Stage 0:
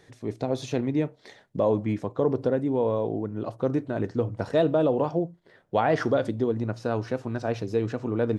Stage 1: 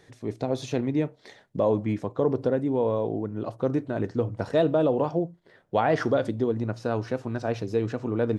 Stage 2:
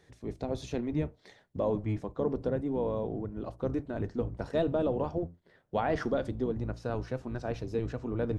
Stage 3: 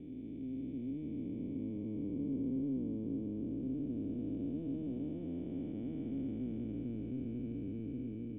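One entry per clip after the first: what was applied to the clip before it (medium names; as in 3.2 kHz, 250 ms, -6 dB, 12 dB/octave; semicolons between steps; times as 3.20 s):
no audible change
octave divider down 1 oct, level -3 dB; trim -7 dB
spectral blur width 1450 ms; cascade formant filter i; trim +6 dB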